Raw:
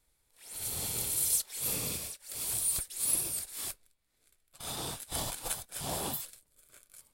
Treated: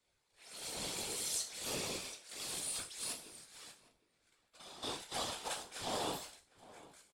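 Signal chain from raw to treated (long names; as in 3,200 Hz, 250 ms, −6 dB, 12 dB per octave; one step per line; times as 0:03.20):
three-way crossover with the lows and the highs turned down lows −16 dB, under 190 Hz, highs −23 dB, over 7,600 Hz
0:03.12–0:04.83: downward compressor 4 to 1, threshold −53 dBFS, peak gain reduction 13.5 dB
resonators tuned to a chord C#2 fifth, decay 0.35 s
random phases in short frames
slap from a distant wall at 130 metres, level −18 dB
level +11 dB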